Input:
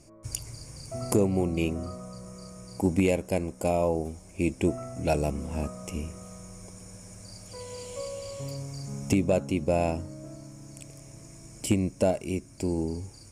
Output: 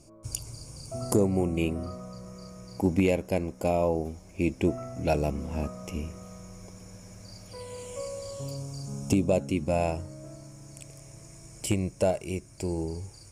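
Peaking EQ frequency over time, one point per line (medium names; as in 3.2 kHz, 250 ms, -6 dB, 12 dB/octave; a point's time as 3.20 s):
peaking EQ -12 dB 0.38 oct
0.98 s 1.9 kHz
1.92 s 8.6 kHz
7.43 s 8.6 kHz
8.48 s 2 kHz
9.27 s 2 kHz
9.85 s 250 Hz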